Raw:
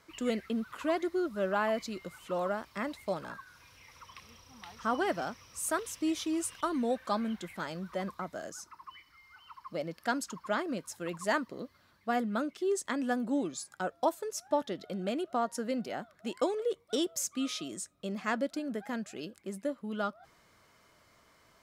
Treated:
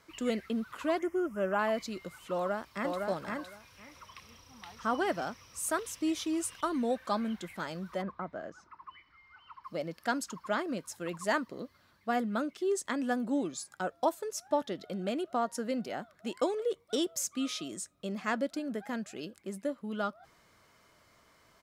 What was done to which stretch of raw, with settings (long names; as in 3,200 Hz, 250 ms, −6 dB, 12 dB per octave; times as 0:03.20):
0:00.99–0:01.59: Butterworth band-reject 4,100 Hz, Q 1.5
0:02.33–0:03.06: delay throw 510 ms, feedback 15%, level −3 dB
0:08.01–0:09.63: low-pass filter 1,800 Hz → 3,200 Hz